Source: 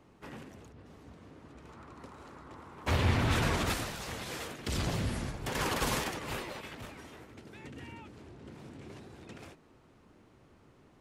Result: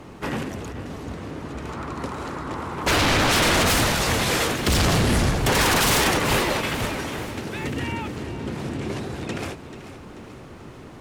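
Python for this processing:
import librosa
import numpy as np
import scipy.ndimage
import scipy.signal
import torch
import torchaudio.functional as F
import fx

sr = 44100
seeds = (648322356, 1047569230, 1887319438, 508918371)

y = fx.fold_sine(x, sr, drive_db=15, ceiling_db=-16.0)
y = fx.echo_feedback(y, sr, ms=437, feedback_pct=51, wet_db=-13.0)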